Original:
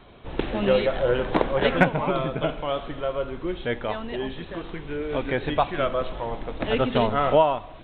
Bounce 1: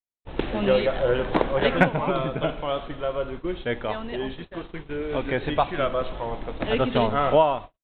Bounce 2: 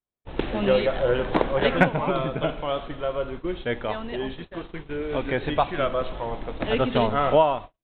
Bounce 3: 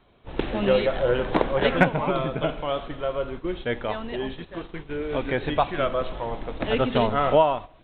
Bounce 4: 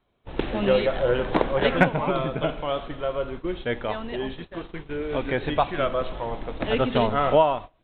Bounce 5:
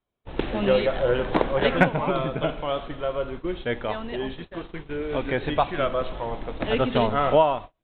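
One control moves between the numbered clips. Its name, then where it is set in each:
gate, range: -60, -47, -10, -22, -35 dB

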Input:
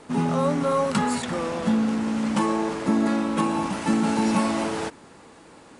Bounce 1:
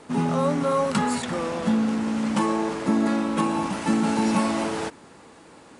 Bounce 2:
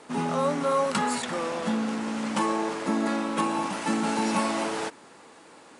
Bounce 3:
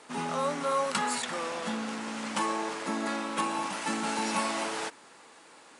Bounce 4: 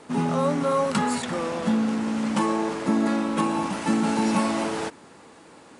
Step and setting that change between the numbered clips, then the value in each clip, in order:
HPF, cutoff: 40, 390, 1100, 110 Hz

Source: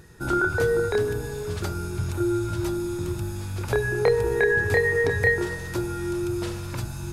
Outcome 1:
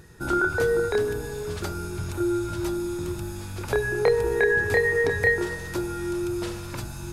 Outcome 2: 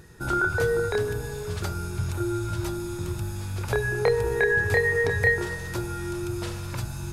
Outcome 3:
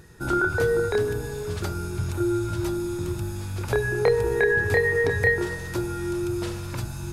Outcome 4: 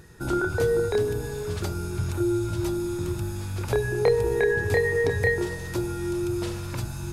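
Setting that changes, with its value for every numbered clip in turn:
dynamic EQ, frequency: 110, 300, 7200, 1500 Hz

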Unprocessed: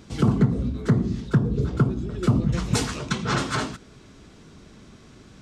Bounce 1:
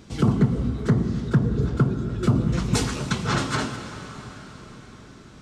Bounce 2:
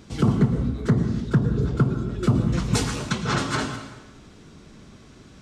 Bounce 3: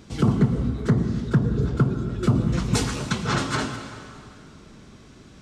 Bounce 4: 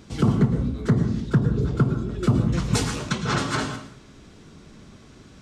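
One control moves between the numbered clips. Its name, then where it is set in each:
plate-style reverb, RT60: 5.2, 1.1, 2.4, 0.51 s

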